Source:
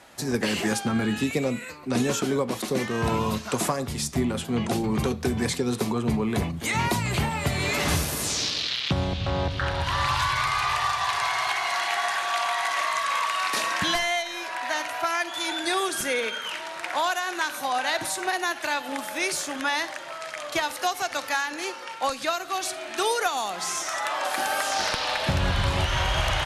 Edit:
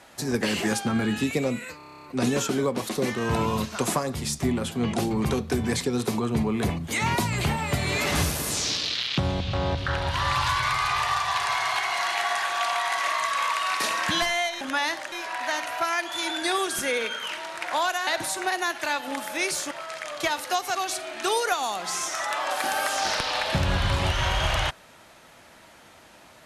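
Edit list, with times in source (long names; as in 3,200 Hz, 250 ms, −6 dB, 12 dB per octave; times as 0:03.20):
0:01.77: stutter 0.03 s, 10 plays
0:17.29–0:17.88: remove
0:19.52–0:20.03: move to 0:14.34
0:21.07–0:22.49: remove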